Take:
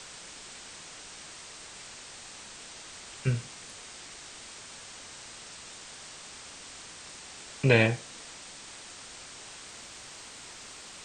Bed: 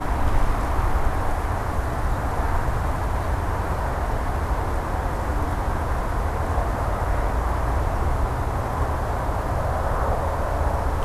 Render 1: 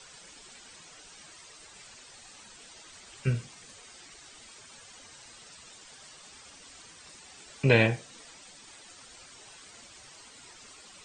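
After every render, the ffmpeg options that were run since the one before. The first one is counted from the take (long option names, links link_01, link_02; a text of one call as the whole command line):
ffmpeg -i in.wav -af "afftdn=noise_reduction=11:noise_floor=-47" out.wav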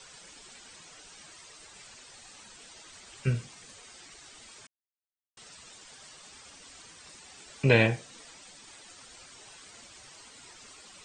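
ffmpeg -i in.wav -filter_complex "[0:a]asplit=3[link_01][link_02][link_03];[link_01]atrim=end=4.67,asetpts=PTS-STARTPTS,afade=type=out:start_time=4.666:duration=0.004:curve=hsin[link_04];[link_02]atrim=start=4.67:end=5.37,asetpts=PTS-STARTPTS,volume=0[link_05];[link_03]atrim=start=5.37,asetpts=PTS-STARTPTS,afade=type=in:duration=0.004:curve=hsin[link_06];[link_04][link_05][link_06]concat=n=3:v=0:a=1" out.wav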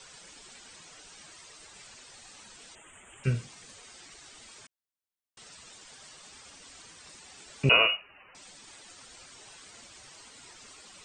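ffmpeg -i in.wav -filter_complex "[0:a]asettb=1/sr,asplit=3[link_01][link_02][link_03];[link_01]atrim=end=2.754[link_04];[link_02]atrim=start=2.75:end=3.24,asetpts=PTS-STARTPTS,afade=type=in:duration=0.004:curve=qsin,afade=type=out:start_time=0.486:duration=0.004:curve=qsin,asuperstop=centerf=4800:order=8:qfactor=1.2[link_05];[link_03]atrim=start=3.236[link_06];[link_04][link_05]acrossfade=duration=0.004:curve1=hsin:curve2=qsin[link_07];[link_07][link_06]acrossfade=duration=0.004:curve1=qsin:curve2=hsin,asettb=1/sr,asplit=3[link_08][link_09][link_10];[link_08]atrim=end=7.694[link_11];[link_09]atrim=start=7.69:end=8.35,asetpts=PTS-STARTPTS,afade=type=in:duration=0.004:curve=qsin,afade=type=out:start_time=0.656:duration=0.004:curve=qsin,lowpass=frequency=2600:width_type=q:width=0.5098,lowpass=frequency=2600:width_type=q:width=0.6013,lowpass=frequency=2600:width_type=q:width=0.9,lowpass=frequency=2600:width_type=q:width=2.563,afreqshift=-3000[link_12];[link_10]atrim=start=8.346[link_13];[link_11][link_12]acrossfade=duration=0.004:curve1=hsin:curve2=qsin[link_14];[link_14][link_13]acrossfade=duration=0.004:curve1=qsin:curve2=hsin" out.wav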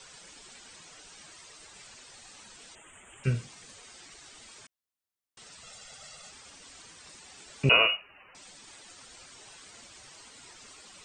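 ffmpeg -i in.wav -filter_complex "[0:a]asettb=1/sr,asplit=3[link_01][link_02][link_03];[link_01]atrim=end=5.634[link_04];[link_02]atrim=start=5.63:end=6.31,asetpts=PTS-STARTPTS,afade=type=in:duration=0.004:curve=qsin,afade=type=out:start_time=0.676:duration=0.004:curve=qsin,aecho=1:1:1.5:0.83,atrim=end_sample=29988[link_05];[link_03]atrim=start=6.306[link_06];[link_04][link_05]acrossfade=duration=0.004:curve1=hsin:curve2=qsin[link_07];[link_07][link_06]acrossfade=duration=0.004:curve1=qsin:curve2=hsin" out.wav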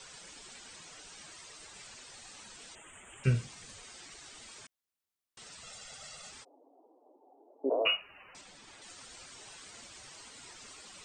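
ffmpeg -i in.wav -filter_complex "[0:a]asettb=1/sr,asplit=3[link_01][link_02][link_03];[link_01]atrim=end=3.234[link_04];[link_02]atrim=start=3.23:end=3.84,asetpts=PTS-STARTPTS,afade=type=in:duration=0.004:curve=qsin,afade=type=out:start_time=0.606:duration=0.004:curve=qsin,asubboost=boost=7:cutoff=200[link_05];[link_03]atrim=start=3.836[link_06];[link_04][link_05]acrossfade=duration=0.004:curve1=hsin:curve2=qsin[link_07];[link_07][link_06]acrossfade=duration=0.004:curve1=qsin:curve2=hsin,asplit=3[link_08][link_09][link_10];[link_08]afade=type=out:start_time=6.43:duration=0.02[link_11];[link_09]asuperpass=centerf=480:order=12:qfactor=0.82,afade=type=in:start_time=6.43:duration=0.02,afade=type=out:start_time=7.85:duration=0.02[link_12];[link_10]afade=type=in:start_time=7.85:duration=0.02[link_13];[link_11][link_12][link_13]amix=inputs=3:normalize=0,asettb=1/sr,asplit=3[link_14][link_15][link_16];[link_14]atrim=end=8.414[link_17];[link_15]atrim=start=8.41:end=8.82,asetpts=PTS-STARTPTS,afade=type=in:duration=0.004:curve=qsin,afade=type=out:start_time=0.406:duration=0.004:curve=qsin,highshelf=frequency=5000:gain=-9.5[link_18];[link_16]atrim=start=8.816[link_19];[link_17][link_18]acrossfade=duration=0.004:curve1=hsin:curve2=qsin[link_20];[link_20][link_19]acrossfade=duration=0.004:curve1=qsin:curve2=hsin" out.wav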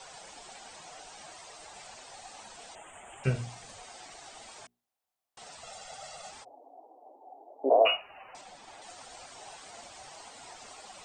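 ffmpeg -i in.wav -af "equalizer=frequency=740:width=1.8:gain=14.5,bandreject=frequency=60:width_type=h:width=6,bandreject=frequency=120:width_type=h:width=6,bandreject=frequency=180:width_type=h:width=6,bandreject=frequency=240:width_type=h:width=6,bandreject=frequency=300:width_type=h:width=6,bandreject=frequency=360:width_type=h:width=6,bandreject=frequency=420:width_type=h:width=6" out.wav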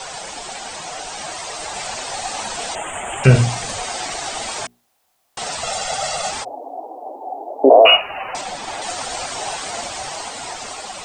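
ffmpeg -i in.wav -af "dynaudnorm=framelen=470:gausssize=7:maxgain=5dB,alimiter=level_in=17dB:limit=-1dB:release=50:level=0:latency=1" out.wav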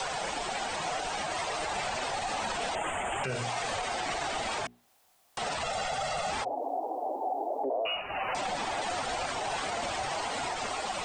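ffmpeg -i in.wav -filter_complex "[0:a]acrossover=split=340|3500[link_01][link_02][link_03];[link_01]acompressor=threshold=-39dB:ratio=4[link_04];[link_02]acompressor=threshold=-27dB:ratio=4[link_05];[link_03]acompressor=threshold=-44dB:ratio=4[link_06];[link_04][link_05][link_06]amix=inputs=3:normalize=0,alimiter=limit=-24dB:level=0:latency=1:release=29" out.wav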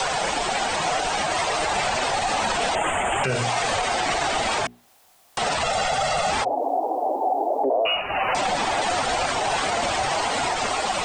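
ffmpeg -i in.wav -af "volume=9.5dB" out.wav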